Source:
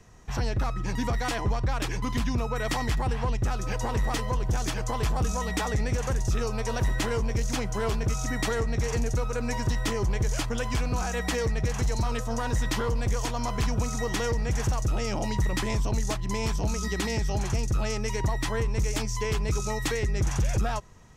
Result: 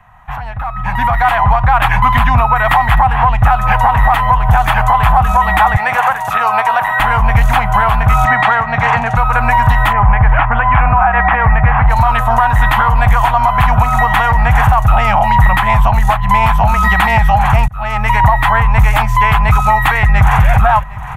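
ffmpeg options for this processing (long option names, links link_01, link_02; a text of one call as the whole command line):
ffmpeg -i in.wav -filter_complex "[0:a]asettb=1/sr,asplit=3[link_01][link_02][link_03];[link_01]atrim=end=5.774[link_04];[link_02]atrim=start=5.77:end=7,asetpts=PTS-STARTPTS,afade=type=in:duration=0.004:curve=qsin,afade=type=out:start_time=1.226:duration=0.004:curve=qsin,highpass=360[link_05];[link_03]atrim=start=6.996[link_06];[link_04][link_05]acrossfade=duration=0.004:curve1=hsin:curve2=qsin[link_07];[link_07][link_06]acrossfade=duration=0.004:curve1=qsin:curve2=hsin,asettb=1/sr,asplit=3[link_08][link_09][link_10];[link_08]atrim=end=8.254[link_11];[link_09]atrim=start=8.25:end=9.17,asetpts=PTS-STARTPTS,afade=type=in:duration=0.004:curve=qsin,afade=type=out:start_time=0.916:duration=0.004:curve=qsin,highpass=150,lowpass=5600[link_12];[link_10]atrim=start=9.166[link_13];[link_11][link_12]acrossfade=duration=0.004:curve1=hsin:curve2=qsin[link_14];[link_14][link_13]acrossfade=duration=0.004:curve1=qsin:curve2=hsin,asplit=3[link_15][link_16][link_17];[link_15]afade=type=out:start_time=9.92:duration=0.02[link_18];[link_16]lowpass=frequency=2400:width=0.5412,lowpass=frequency=2400:width=1.3066,afade=type=in:start_time=9.92:duration=0.02,afade=type=out:start_time=11.89:duration=0.02[link_19];[link_17]afade=type=in:start_time=11.89:duration=0.02[link_20];[link_18][link_19][link_20]amix=inputs=3:normalize=0,asplit=2[link_21][link_22];[link_22]afade=type=in:start_time=19.94:duration=0.01,afade=type=out:start_time=20.45:duration=0.01,aecho=0:1:380|760|1140|1520:0.316228|0.11068|0.0387379|0.0135583[link_23];[link_21][link_23]amix=inputs=2:normalize=0,asplit=2[link_24][link_25];[link_24]atrim=end=17.68,asetpts=PTS-STARTPTS,afade=type=out:start_time=17.676:duration=0.004:curve=hsin[link_26];[link_25]atrim=start=17.68,asetpts=PTS-STARTPTS,afade=type=in:duration=0.72[link_27];[link_26][link_27]concat=n=2:v=0:a=1,firequalizer=gain_entry='entry(140,0);entry(370,-24);entry(750,13);entry(3300,-2);entry(5300,-23);entry(12000,0)':delay=0.05:min_phase=1,alimiter=limit=-22.5dB:level=0:latency=1:release=397,dynaudnorm=framelen=620:gausssize=3:maxgain=16dB,volume=5.5dB" out.wav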